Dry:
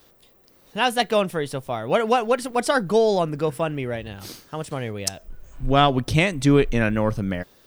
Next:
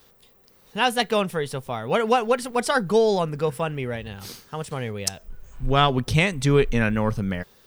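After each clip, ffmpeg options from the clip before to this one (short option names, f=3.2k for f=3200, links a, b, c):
-af "superequalizer=6b=0.447:8b=0.631"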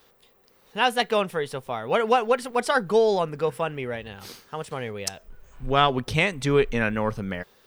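-af "bass=f=250:g=-7,treble=f=4k:g=-5"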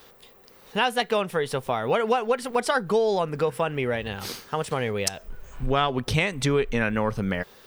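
-af "acompressor=threshold=-30dB:ratio=3,volume=7.5dB"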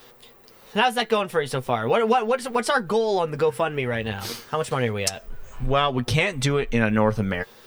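-af "flanger=delay=8:depth=1.4:regen=35:speed=0.64:shape=triangular,volume=6dB"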